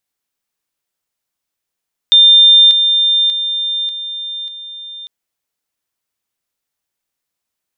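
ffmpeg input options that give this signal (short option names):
-f lavfi -i "aevalsrc='pow(10,(-3.5-6*floor(t/0.59))/20)*sin(2*PI*3600*t)':d=2.95:s=44100"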